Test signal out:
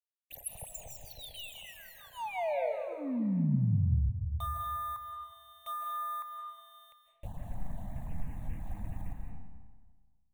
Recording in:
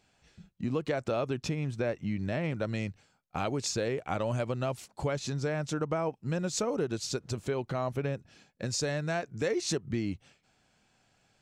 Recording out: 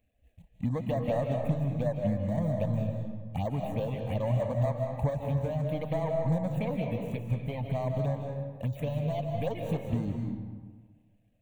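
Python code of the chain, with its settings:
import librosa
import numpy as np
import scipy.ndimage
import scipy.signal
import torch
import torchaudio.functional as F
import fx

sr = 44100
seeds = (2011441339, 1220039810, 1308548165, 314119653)

y = scipy.signal.medfilt(x, 41)
y = fx.fixed_phaser(y, sr, hz=1400.0, stages=6)
y = fx.env_phaser(y, sr, low_hz=150.0, high_hz=2700.0, full_db=-33.0)
y = fx.dereverb_blind(y, sr, rt60_s=0.81)
y = fx.rev_freeverb(y, sr, rt60_s=1.5, hf_ratio=0.6, predelay_ms=120, drr_db=2.0)
y = F.gain(torch.from_numpy(y), 7.5).numpy()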